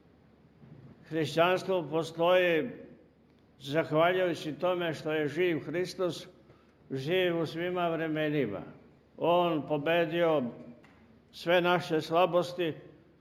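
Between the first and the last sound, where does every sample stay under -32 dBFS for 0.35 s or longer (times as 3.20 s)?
2.70–3.67 s
6.18–6.92 s
8.61–9.21 s
10.49–11.41 s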